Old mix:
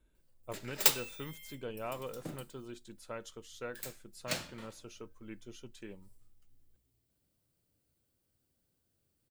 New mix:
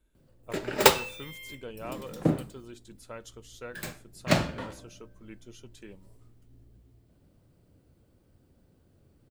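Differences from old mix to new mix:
background: remove first-order pre-emphasis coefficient 0.9
master: add high-shelf EQ 5,800 Hz +4 dB

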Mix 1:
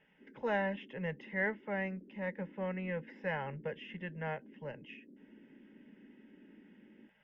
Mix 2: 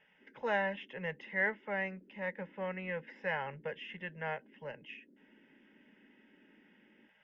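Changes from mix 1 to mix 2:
speech +3.5 dB
master: add low-shelf EQ 410 Hz −10 dB

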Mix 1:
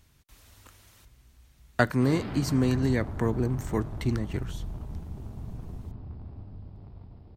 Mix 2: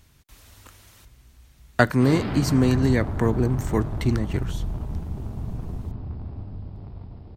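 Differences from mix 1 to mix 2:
speech +5.0 dB
background +7.5 dB

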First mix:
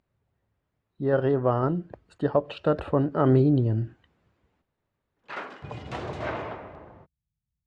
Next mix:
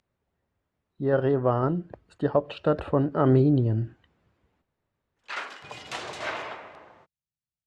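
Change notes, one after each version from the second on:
background: add spectral tilt +4.5 dB per octave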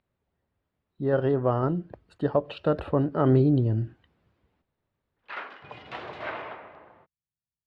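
speech: remove low-pass filter 2,300 Hz 12 dB per octave
master: add high-frequency loss of the air 360 metres

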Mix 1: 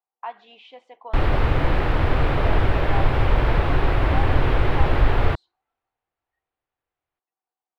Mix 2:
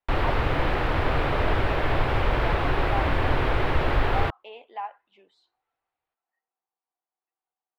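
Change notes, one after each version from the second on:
background: entry −1.05 s
master: add low-shelf EQ 270 Hz −6.5 dB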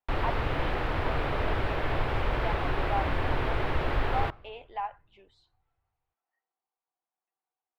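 background −6.0 dB
reverb: on, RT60 1.7 s

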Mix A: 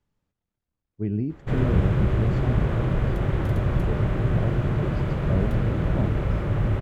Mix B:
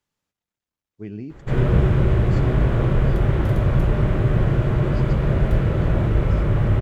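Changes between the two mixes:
speech: add spectral tilt +3 dB per octave
background: send +10.5 dB

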